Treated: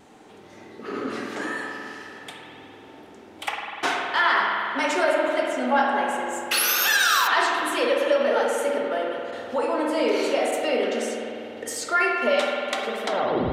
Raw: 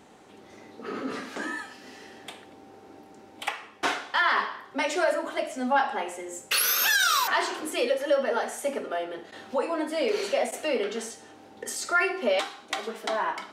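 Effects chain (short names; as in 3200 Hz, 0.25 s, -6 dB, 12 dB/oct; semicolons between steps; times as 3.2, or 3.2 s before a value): tape stop at the end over 0.42 s; vibrato 0.88 Hz 11 cents; spring tank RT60 2.8 s, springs 49 ms, chirp 65 ms, DRR 0 dB; gain +1.5 dB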